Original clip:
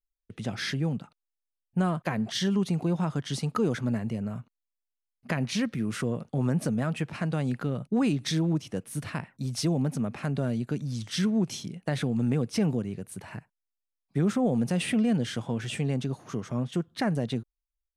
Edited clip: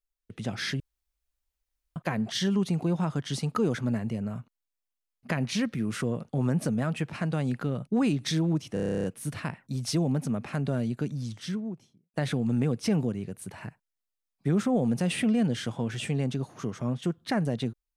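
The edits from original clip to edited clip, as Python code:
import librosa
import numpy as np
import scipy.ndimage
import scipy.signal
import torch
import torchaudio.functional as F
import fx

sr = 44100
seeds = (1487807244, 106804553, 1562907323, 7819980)

y = fx.studio_fade_out(x, sr, start_s=10.66, length_s=1.18)
y = fx.edit(y, sr, fx.room_tone_fill(start_s=0.8, length_s=1.16),
    fx.stutter(start_s=8.74, slice_s=0.03, count=11), tone=tone)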